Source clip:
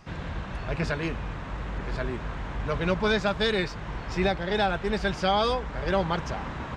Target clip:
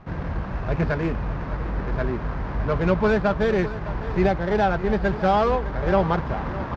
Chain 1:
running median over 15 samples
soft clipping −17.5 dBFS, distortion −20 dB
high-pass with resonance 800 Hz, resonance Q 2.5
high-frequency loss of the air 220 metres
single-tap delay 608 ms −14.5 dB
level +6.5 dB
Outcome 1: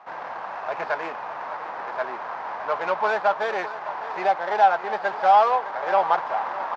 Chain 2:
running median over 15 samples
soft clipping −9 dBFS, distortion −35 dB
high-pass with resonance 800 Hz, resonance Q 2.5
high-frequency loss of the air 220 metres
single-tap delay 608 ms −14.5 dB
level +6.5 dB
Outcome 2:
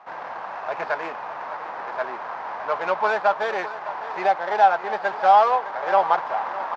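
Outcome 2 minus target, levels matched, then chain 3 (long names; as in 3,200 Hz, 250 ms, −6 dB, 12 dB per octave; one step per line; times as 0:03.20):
1,000 Hz band +6.0 dB
running median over 15 samples
soft clipping −9 dBFS, distortion −35 dB
high-frequency loss of the air 220 metres
single-tap delay 608 ms −14.5 dB
level +6.5 dB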